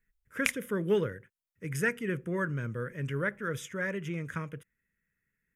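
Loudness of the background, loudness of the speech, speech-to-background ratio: -33.5 LUFS, -33.5 LUFS, 0.0 dB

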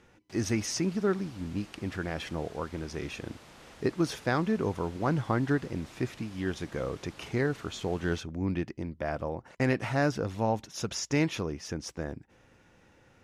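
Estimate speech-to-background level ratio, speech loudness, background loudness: 20.0 dB, -32.0 LUFS, -52.0 LUFS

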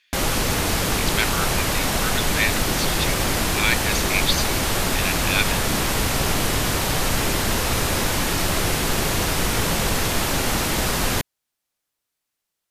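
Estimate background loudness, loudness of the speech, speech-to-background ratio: -21.5 LUFS, -26.5 LUFS, -5.0 dB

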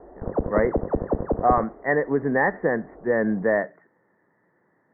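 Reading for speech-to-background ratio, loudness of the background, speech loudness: 3.5 dB, -27.5 LUFS, -24.0 LUFS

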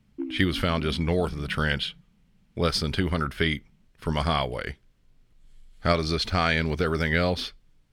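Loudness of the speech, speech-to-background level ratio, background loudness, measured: -26.5 LUFS, 14.0 dB, -40.5 LUFS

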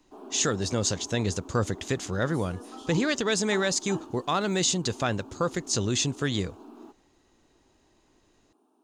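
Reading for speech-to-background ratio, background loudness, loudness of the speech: 17.0 dB, -44.5 LUFS, -27.5 LUFS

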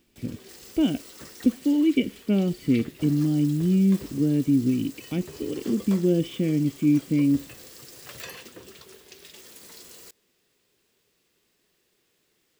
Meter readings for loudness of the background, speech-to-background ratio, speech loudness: -43.5 LUFS, 19.5 dB, -24.0 LUFS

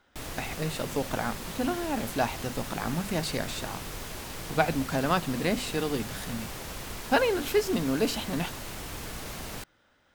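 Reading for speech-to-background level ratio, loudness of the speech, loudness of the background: 7.5 dB, -30.5 LUFS, -38.0 LUFS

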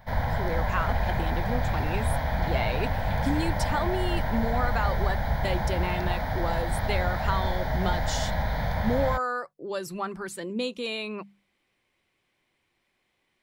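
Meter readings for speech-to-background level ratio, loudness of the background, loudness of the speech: -3.0 dB, -29.0 LUFS, -32.0 LUFS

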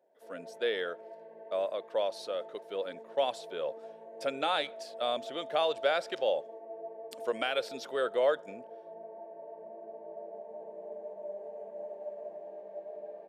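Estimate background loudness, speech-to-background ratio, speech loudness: -46.0 LUFS, 12.5 dB, -33.5 LUFS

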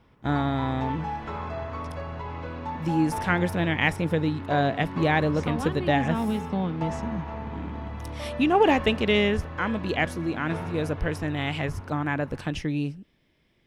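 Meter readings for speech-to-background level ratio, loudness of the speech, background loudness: 9.0 dB, -26.5 LUFS, -35.5 LUFS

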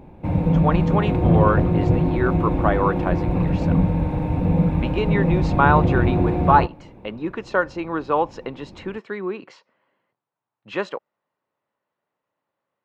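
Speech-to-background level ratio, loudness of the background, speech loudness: -3.5 dB, -20.5 LUFS, -24.0 LUFS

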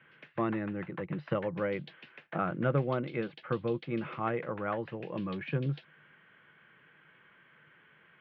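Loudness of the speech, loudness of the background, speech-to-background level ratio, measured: -34.5 LUFS, -52.0 LUFS, 17.5 dB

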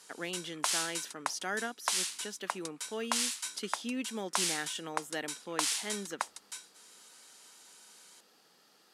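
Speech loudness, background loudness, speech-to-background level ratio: -39.5 LUFS, -35.5 LUFS, -4.0 dB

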